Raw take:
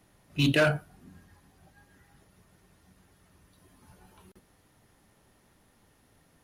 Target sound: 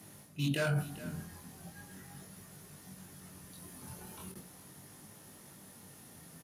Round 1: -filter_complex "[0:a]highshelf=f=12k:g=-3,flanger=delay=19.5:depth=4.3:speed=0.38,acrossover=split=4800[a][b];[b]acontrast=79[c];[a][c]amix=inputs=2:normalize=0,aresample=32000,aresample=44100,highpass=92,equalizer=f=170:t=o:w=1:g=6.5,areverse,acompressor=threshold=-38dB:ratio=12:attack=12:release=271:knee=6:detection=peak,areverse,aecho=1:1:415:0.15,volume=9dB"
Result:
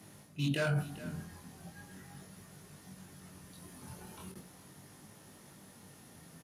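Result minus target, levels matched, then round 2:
8000 Hz band -4.5 dB
-filter_complex "[0:a]highshelf=f=12k:g=8.5,flanger=delay=19.5:depth=4.3:speed=0.38,acrossover=split=4800[a][b];[b]acontrast=79[c];[a][c]amix=inputs=2:normalize=0,aresample=32000,aresample=44100,highpass=92,equalizer=f=170:t=o:w=1:g=6.5,areverse,acompressor=threshold=-38dB:ratio=12:attack=12:release=271:knee=6:detection=peak,areverse,aecho=1:1:415:0.15,volume=9dB"

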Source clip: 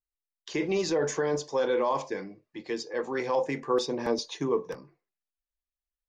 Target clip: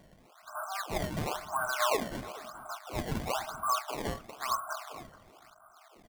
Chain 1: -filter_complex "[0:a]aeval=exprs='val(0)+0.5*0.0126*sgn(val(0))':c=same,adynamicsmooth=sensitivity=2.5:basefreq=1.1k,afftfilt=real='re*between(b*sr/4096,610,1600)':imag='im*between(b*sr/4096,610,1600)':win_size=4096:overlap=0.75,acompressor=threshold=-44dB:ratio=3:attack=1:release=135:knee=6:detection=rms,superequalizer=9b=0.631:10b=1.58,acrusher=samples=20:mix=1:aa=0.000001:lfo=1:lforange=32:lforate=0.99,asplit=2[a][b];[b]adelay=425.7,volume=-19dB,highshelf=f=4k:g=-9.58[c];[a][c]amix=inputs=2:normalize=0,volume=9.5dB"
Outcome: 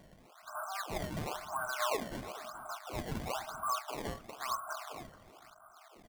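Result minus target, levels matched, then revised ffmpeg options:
compressor: peak gain reduction +5 dB
-filter_complex "[0:a]aeval=exprs='val(0)+0.5*0.0126*sgn(val(0))':c=same,adynamicsmooth=sensitivity=2.5:basefreq=1.1k,afftfilt=real='re*between(b*sr/4096,610,1600)':imag='im*between(b*sr/4096,610,1600)':win_size=4096:overlap=0.75,acompressor=threshold=-36.5dB:ratio=3:attack=1:release=135:knee=6:detection=rms,superequalizer=9b=0.631:10b=1.58,acrusher=samples=20:mix=1:aa=0.000001:lfo=1:lforange=32:lforate=0.99,asplit=2[a][b];[b]adelay=425.7,volume=-19dB,highshelf=f=4k:g=-9.58[c];[a][c]amix=inputs=2:normalize=0,volume=9.5dB"

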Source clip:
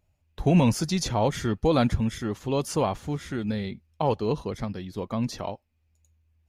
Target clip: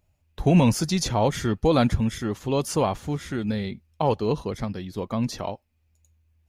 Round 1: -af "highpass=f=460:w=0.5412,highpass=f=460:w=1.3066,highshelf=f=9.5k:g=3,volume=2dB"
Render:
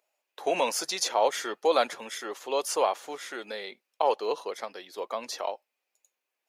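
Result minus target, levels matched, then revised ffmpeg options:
500 Hz band +2.5 dB
-af "highshelf=f=9.5k:g=3,volume=2dB"

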